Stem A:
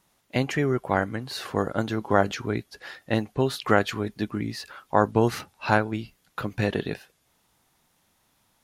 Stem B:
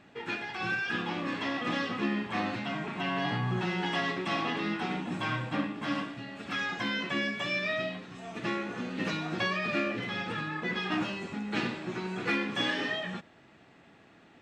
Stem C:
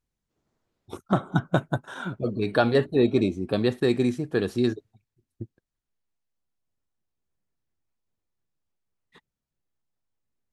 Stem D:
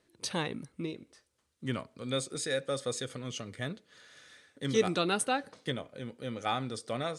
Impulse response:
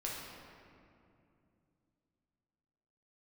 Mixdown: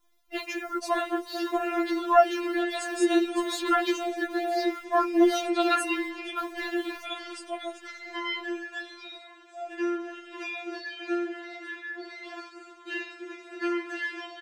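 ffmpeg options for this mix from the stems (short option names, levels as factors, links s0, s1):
-filter_complex "[0:a]equalizer=f=8600:w=1.9:g=-12.5,acrusher=bits=9:dc=4:mix=0:aa=0.000001,volume=1.06[s0];[1:a]adelay=1350,volume=0.841[s1];[2:a]volume=0.562[s2];[3:a]adelay=600,volume=1.19[s3];[s0][s1][s2][s3]amix=inputs=4:normalize=0,equalizer=f=760:w=6.4:g=3,afftfilt=real='re*4*eq(mod(b,16),0)':imag='im*4*eq(mod(b,16),0)':win_size=2048:overlap=0.75"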